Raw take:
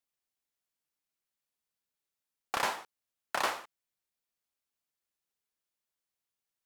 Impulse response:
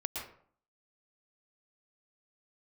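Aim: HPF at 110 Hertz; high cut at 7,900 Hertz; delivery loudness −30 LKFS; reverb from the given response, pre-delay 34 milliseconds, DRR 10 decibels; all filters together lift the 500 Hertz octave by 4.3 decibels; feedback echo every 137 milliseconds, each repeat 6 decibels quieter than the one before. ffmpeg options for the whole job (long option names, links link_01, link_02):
-filter_complex "[0:a]highpass=110,lowpass=7900,equalizer=frequency=500:width_type=o:gain=5.5,aecho=1:1:137|274|411|548|685|822:0.501|0.251|0.125|0.0626|0.0313|0.0157,asplit=2[link_01][link_02];[1:a]atrim=start_sample=2205,adelay=34[link_03];[link_02][link_03]afir=irnorm=-1:irlink=0,volume=-12.5dB[link_04];[link_01][link_04]amix=inputs=2:normalize=0,volume=3.5dB"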